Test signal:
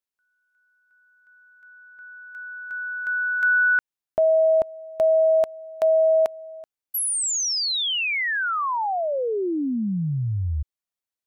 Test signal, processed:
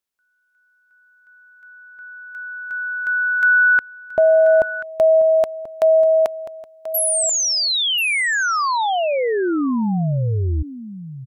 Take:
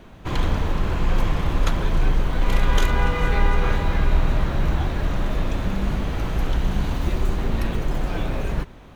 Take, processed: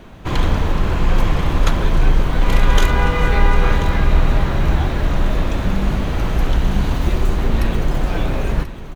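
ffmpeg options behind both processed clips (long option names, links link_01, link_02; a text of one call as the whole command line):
ffmpeg -i in.wav -af "aecho=1:1:1035:0.211,volume=5dB" out.wav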